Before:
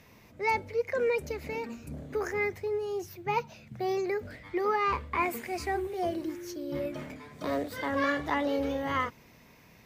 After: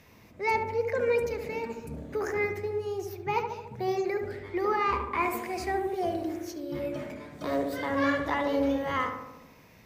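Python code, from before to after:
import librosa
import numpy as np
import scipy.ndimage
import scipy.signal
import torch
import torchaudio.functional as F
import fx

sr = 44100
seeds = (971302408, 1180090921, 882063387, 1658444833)

y = fx.echo_filtered(x, sr, ms=72, feedback_pct=69, hz=1600.0, wet_db=-5)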